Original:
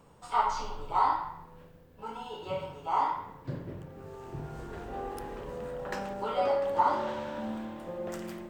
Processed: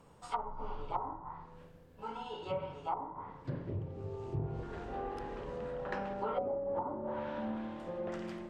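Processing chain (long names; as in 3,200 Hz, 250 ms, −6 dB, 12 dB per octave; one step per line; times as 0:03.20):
0:03.69–0:04.63: graphic EQ with 15 bands 100 Hz +12 dB, 400 Hz +5 dB, 1,600 Hz −9 dB
treble cut that deepens with the level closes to 420 Hz, closed at −25.5 dBFS
level −2 dB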